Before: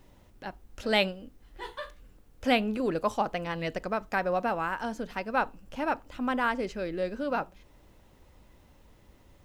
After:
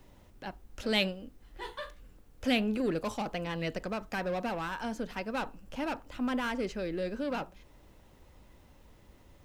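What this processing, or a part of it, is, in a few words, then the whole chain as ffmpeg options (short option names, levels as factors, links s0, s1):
one-band saturation: -filter_complex "[0:a]acrossover=split=400|2100[s0][s1][s2];[s1]asoftclip=type=tanh:threshold=0.0178[s3];[s0][s3][s2]amix=inputs=3:normalize=0"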